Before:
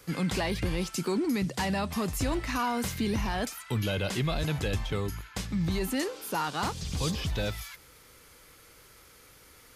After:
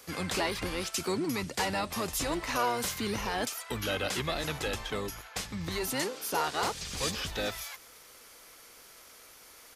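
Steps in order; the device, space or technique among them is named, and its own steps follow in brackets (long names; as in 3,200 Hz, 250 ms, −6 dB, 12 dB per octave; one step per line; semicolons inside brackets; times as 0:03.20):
octave pedal (pitch-shifted copies added −12 semitones −5 dB)
bass and treble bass −12 dB, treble +3 dB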